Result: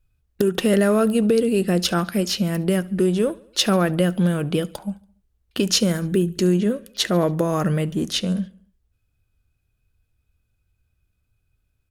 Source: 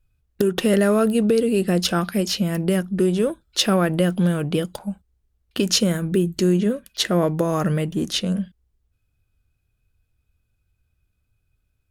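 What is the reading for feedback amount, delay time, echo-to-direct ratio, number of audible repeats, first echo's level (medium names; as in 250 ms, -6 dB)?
54%, 71 ms, -22.0 dB, 3, -23.5 dB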